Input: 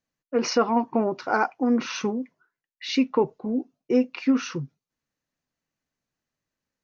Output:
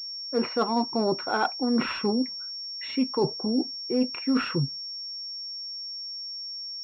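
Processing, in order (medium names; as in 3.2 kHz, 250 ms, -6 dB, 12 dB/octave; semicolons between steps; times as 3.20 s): reverse; compression 6:1, threshold -31 dBFS, peak gain reduction 15 dB; reverse; class-D stage that switches slowly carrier 5.5 kHz; trim +8.5 dB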